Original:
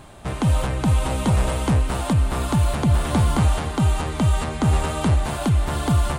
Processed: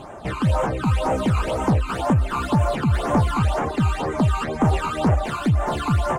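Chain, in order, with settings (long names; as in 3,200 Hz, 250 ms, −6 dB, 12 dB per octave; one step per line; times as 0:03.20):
reverb reduction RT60 0.64 s
mid-hump overdrive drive 21 dB, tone 1,300 Hz, clips at −9 dBFS
all-pass phaser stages 12, 2 Hz, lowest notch 560–4,200 Hz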